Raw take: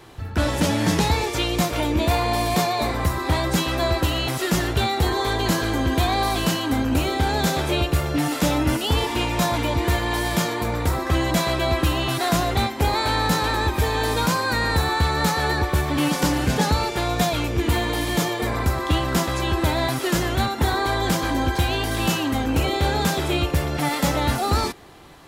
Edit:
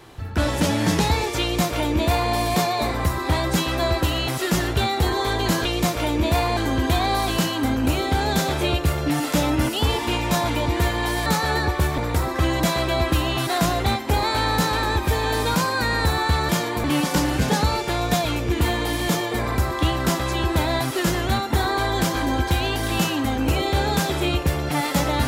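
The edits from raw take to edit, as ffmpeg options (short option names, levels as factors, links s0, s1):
-filter_complex "[0:a]asplit=7[s0][s1][s2][s3][s4][s5][s6];[s0]atrim=end=5.652[s7];[s1]atrim=start=1.408:end=2.332[s8];[s2]atrim=start=5.648:end=10.342[s9];[s3]atrim=start=15.198:end=15.922[s10];[s4]atrim=start=10.688:end=15.202[s11];[s5]atrim=start=10.338:end=10.692[s12];[s6]atrim=start=15.918[s13];[s7][s8]acrossfade=d=0.004:c1=hsin:c2=hsin[s14];[s14][s9]acrossfade=d=0.004:c1=hsin:c2=hsin[s15];[s15][s10]acrossfade=d=0.004:c1=hsin:c2=hsin[s16];[s16][s11]acrossfade=d=0.004:c1=hsin:c2=hsin[s17];[s17][s12]acrossfade=d=0.004:c1=hsin:c2=hsin[s18];[s18][s13]acrossfade=d=0.004:c1=hsin:c2=hsin"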